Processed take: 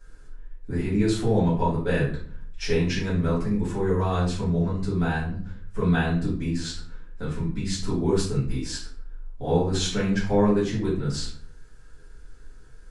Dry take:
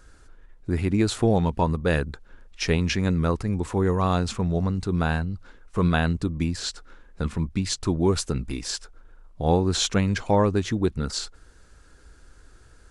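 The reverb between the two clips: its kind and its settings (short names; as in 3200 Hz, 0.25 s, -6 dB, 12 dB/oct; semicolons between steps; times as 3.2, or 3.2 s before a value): shoebox room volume 51 m³, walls mixed, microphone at 2 m; gain -12.5 dB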